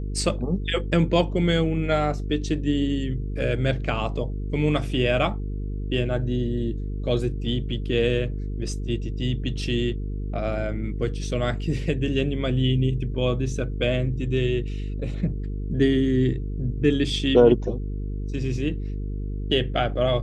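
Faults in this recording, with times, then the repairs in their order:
buzz 50 Hz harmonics 9 -29 dBFS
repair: de-hum 50 Hz, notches 9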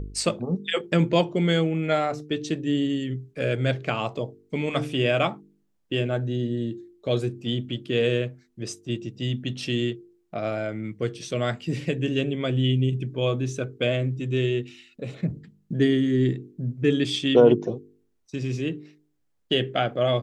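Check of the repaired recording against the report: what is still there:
none

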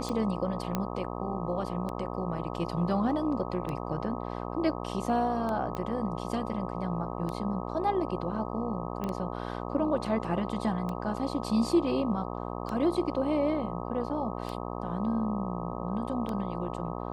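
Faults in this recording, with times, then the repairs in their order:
buzz 60 Hz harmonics 21 -36 dBFS
tick 33 1/3 rpm -22 dBFS
0.75 pop -15 dBFS
5.75 pop -22 dBFS
9.04 pop -21 dBFS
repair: de-click; de-hum 60 Hz, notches 21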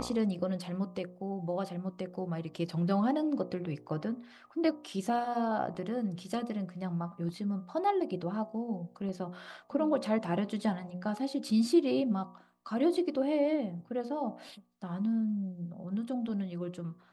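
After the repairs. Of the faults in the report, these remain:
none

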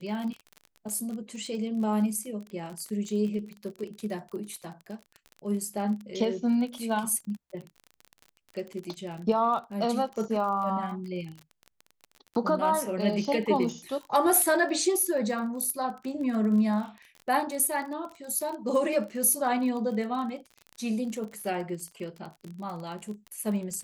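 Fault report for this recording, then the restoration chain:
crackle 33/s -35 dBFS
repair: de-click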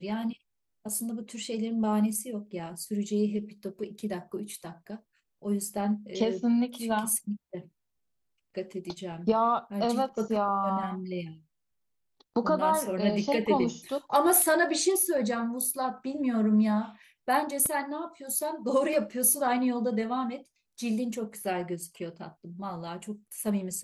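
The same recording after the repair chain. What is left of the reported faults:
none

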